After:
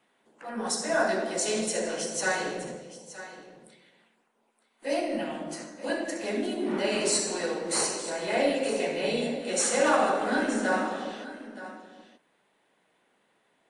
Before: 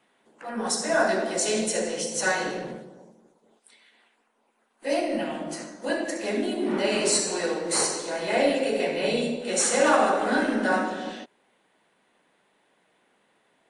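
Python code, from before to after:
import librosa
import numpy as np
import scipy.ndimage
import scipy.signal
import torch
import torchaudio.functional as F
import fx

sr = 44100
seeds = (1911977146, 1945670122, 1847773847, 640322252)

y = x + 10.0 ** (-14.5 / 20.0) * np.pad(x, (int(921 * sr / 1000.0), 0))[:len(x)]
y = y * librosa.db_to_amplitude(-3.0)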